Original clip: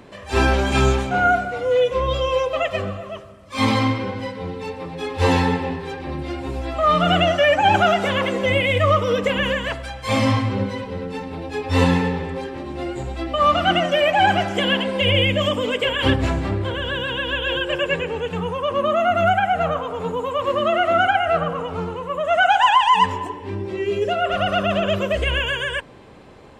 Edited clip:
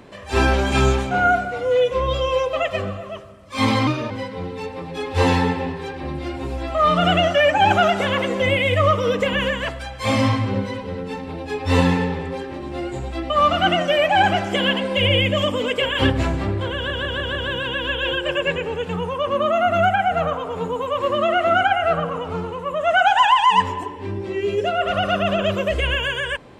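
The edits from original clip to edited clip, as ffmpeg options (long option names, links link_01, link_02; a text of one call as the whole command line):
ffmpeg -i in.wav -filter_complex "[0:a]asplit=7[link_01][link_02][link_03][link_04][link_05][link_06][link_07];[link_01]atrim=end=3.874[link_08];[link_02]atrim=start=3.87:end=4.14,asetpts=PTS-STARTPTS,asetrate=51156,aresample=44100[link_09];[link_03]atrim=start=4.136:end=16.942[link_10];[link_04]atrim=start=16.788:end=16.942[link_11];[link_05]atrim=start=16.788:end=16.942[link_12];[link_06]atrim=start=16.788:end=16.942[link_13];[link_07]atrim=start=16.788[link_14];[link_08][link_09]acrossfade=duration=0.004:curve1=hsin:curve2=hsin[link_15];[link_15][link_10]acrossfade=duration=0.004:curve1=hsin:curve2=hsin[link_16];[link_16][link_11]acrossfade=duration=0.004:curve1=hsin:curve2=hsin[link_17];[link_17][link_12]acrossfade=duration=0.004:curve1=hsin:curve2=hsin[link_18];[link_18][link_13]acrossfade=duration=0.004:curve1=hsin:curve2=hsin[link_19];[link_19][link_14]acrossfade=duration=0.004:curve1=hsin:curve2=hsin" out.wav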